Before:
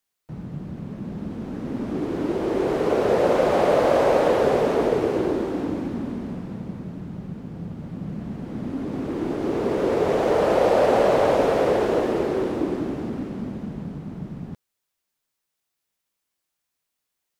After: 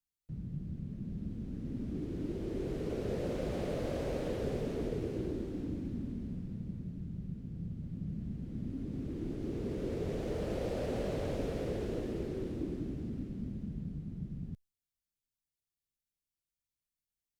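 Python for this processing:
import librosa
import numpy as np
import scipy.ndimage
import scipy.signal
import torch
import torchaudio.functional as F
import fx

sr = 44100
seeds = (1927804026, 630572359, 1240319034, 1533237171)

y = fx.tone_stack(x, sr, knobs='10-0-1')
y = y * 10.0 ** (7.0 / 20.0)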